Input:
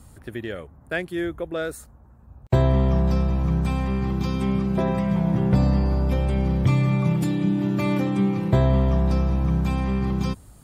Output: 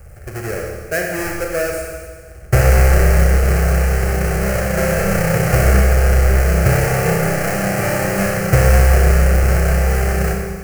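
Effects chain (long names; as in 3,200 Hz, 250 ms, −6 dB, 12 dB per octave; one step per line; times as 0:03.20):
each half-wave held at its own peak
phaser with its sweep stopped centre 970 Hz, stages 6
four-comb reverb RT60 1.6 s, combs from 28 ms, DRR 0 dB
level +4 dB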